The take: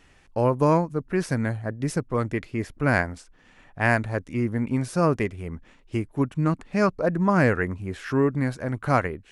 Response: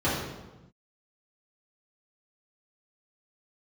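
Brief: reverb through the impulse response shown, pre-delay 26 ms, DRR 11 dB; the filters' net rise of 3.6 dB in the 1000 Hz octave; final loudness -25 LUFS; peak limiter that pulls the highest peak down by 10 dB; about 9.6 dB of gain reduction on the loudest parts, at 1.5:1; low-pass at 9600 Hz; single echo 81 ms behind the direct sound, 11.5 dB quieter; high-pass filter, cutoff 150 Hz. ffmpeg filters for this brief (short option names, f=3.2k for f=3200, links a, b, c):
-filter_complex "[0:a]highpass=150,lowpass=9.6k,equalizer=f=1k:t=o:g=4.5,acompressor=threshold=-41dB:ratio=1.5,alimiter=limit=-23dB:level=0:latency=1,aecho=1:1:81:0.266,asplit=2[a][b];[1:a]atrim=start_sample=2205,adelay=26[c];[b][c]afir=irnorm=-1:irlink=0,volume=-25dB[d];[a][d]amix=inputs=2:normalize=0,volume=10dB"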